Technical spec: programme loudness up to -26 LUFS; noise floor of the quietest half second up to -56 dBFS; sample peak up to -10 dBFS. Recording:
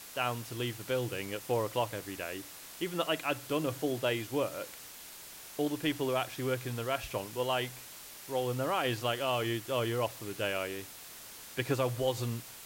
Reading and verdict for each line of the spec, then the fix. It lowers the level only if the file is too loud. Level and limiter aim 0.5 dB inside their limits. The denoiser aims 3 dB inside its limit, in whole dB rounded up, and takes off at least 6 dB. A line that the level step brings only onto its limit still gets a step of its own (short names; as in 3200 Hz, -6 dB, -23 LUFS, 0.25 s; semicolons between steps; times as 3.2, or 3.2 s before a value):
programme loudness -34.0 LUFS: OK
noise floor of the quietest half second -49 dBFS: fail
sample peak -17.0 dBFS: OK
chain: denoiser 10 dB, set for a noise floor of -49 dBFS